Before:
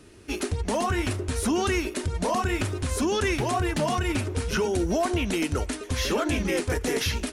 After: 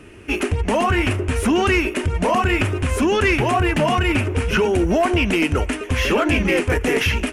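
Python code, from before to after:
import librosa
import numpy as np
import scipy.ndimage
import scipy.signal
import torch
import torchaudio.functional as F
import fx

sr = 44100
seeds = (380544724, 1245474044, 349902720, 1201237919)

y = fx.high_shelf_res(x, sr, hz=3300.0, db=-6.0, q=3.0)
y = 10.0 ** (-16.0 / 20.0) * np.tanh(y / 10.0 ** (-16.0 / 20.0))
y = y * 10.0 ** (8.0 / 20.0)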